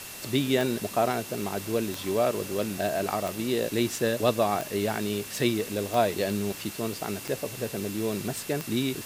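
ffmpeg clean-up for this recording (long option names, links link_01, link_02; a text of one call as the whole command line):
ffmpeg -i in.wav -af "adeclick=threshold=4,bandreject=frequency=2700:width=30,afwtdn=0.01" out.wav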